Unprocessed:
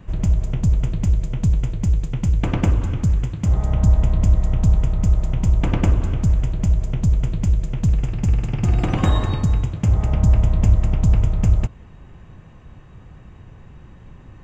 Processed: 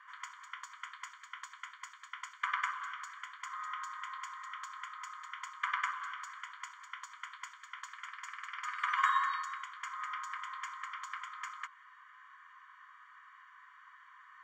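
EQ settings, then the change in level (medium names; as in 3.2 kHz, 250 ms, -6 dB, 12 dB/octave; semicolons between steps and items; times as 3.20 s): Savitzky-Golay filter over 41 samples; brick-wall FIR high-pass 970 Hz; tilt EQ +3 dB/octave; +3.0 dB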